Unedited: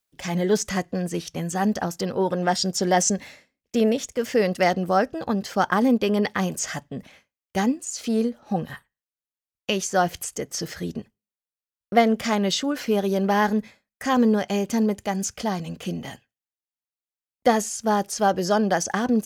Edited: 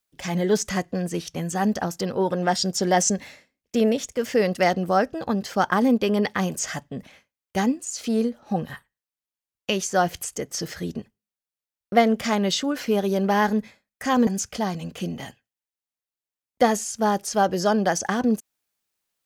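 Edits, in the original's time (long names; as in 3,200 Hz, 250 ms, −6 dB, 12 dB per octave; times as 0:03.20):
0:14.27–0:15.12: remove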